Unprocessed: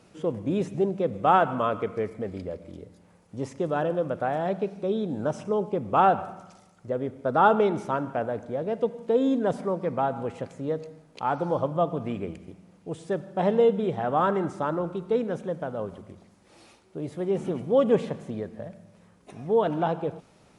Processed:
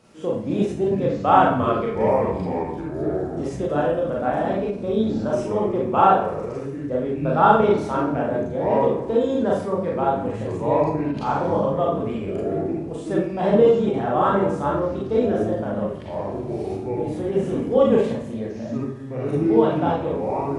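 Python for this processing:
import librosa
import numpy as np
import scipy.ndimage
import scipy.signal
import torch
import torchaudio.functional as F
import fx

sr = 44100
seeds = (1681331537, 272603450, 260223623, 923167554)

y = fx.rev_schroeder(x, sr, rt60_s=0.41, comb_ms=28, drr_db=-4.0)
y = fx.echo_pitch(y, sr, ms=200, semitones=-6, count=3, db_per_echo=-6.0)
y = fx.end_taper(y, sr, db_per_s=170.0)
y = y * 10.0 ** (-1.0 / 20.0)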